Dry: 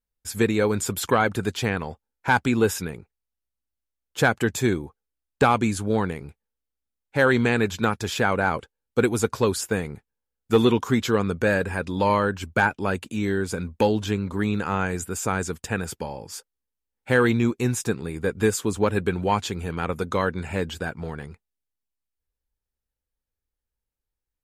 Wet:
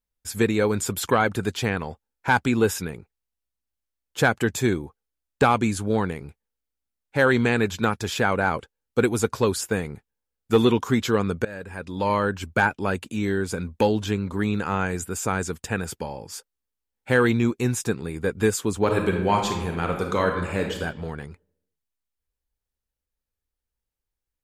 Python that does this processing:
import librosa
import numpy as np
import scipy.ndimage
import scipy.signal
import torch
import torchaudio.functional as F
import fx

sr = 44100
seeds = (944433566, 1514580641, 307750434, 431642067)

y = fx.reverb_throw(x, sr, start_s=18.78, length_s=1.99, rt60_s=0.99, drr_db=2.5)
y = fx.edit(y, sr, fx.fade_in_from(start_s=11.45, length_s=0.86, floor_db=-20.5), tone=tone)